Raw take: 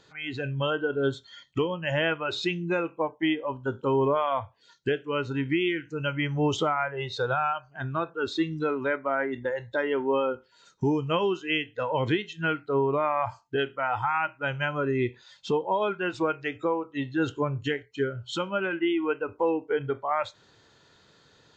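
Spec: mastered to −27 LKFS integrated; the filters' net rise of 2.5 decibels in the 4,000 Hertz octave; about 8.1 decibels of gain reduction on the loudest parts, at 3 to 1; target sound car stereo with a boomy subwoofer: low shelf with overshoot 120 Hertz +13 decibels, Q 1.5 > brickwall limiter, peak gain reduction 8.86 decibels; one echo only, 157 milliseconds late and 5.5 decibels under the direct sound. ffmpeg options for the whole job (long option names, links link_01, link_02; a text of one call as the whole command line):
ffmpeg -i in.wav -af "equalizer=frequency=4000:width_type=o:gain=3.5,acompressor=threshold=-32dB:ratio=3,lowshelf=frequency=120:width_type=q:width=1.5:gain=13,aecho=1:1:157:0.531,volume=10dB,alimiter=limit=-18.5dB:level=0:latency=1" out.wav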